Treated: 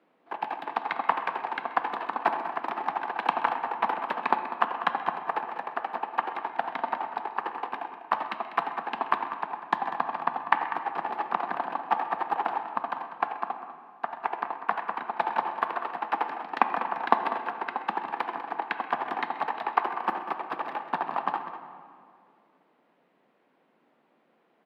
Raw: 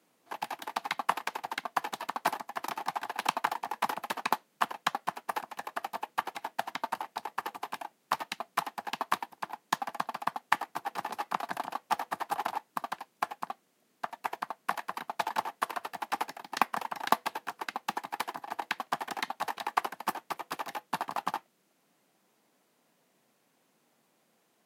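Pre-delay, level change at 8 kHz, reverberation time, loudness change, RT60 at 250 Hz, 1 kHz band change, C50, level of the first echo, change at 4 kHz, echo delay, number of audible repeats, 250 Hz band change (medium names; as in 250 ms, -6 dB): 23 ms, under -20 dB, 2.3 s, +4.5 dB, 2.7 s, +5.5 dB, 7.0 dB, -17.5 dB, -4.0 dB, 130 ms, 2, +4.5 dB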